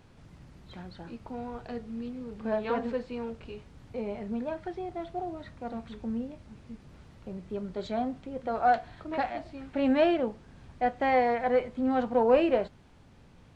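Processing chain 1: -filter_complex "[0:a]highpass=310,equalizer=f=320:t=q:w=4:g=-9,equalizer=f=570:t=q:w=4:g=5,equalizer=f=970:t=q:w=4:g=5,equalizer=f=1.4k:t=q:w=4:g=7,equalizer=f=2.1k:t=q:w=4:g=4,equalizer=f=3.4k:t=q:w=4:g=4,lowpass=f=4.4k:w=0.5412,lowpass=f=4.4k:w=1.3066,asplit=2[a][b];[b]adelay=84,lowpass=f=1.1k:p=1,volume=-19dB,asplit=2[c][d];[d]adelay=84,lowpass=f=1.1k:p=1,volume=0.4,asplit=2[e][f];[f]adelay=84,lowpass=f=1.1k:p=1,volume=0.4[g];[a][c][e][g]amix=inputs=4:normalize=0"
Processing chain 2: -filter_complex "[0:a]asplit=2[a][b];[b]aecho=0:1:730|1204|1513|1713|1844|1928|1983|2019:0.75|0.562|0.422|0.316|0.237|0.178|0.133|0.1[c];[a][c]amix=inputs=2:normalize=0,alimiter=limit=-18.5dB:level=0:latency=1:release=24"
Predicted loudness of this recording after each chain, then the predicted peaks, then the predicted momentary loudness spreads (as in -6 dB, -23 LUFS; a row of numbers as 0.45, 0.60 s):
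-28.5, -30.0 LUFS; -10.0, -18.5 dBFS; 20, 11 LU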